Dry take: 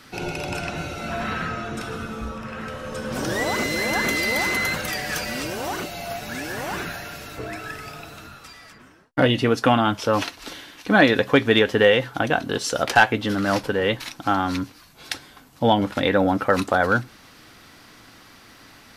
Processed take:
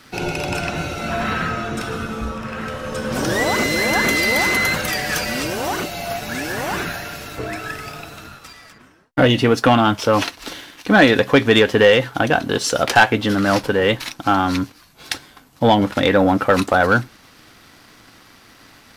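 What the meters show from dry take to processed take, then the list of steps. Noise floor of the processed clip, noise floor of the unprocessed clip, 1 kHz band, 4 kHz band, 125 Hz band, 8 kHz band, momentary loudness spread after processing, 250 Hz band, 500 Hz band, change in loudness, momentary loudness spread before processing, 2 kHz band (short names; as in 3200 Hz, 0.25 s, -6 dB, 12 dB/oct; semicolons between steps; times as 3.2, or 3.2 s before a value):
-49 dBFS, -49 dBFS, +4.0 dB, +4.5 dB, +5.0 dB, +5.5 dB, 15 LU, +4.5 dB, +4.5 dB, +4.5 dB, 16 LU, +4.0 dB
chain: sample leveller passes 1; gain +1.5 dB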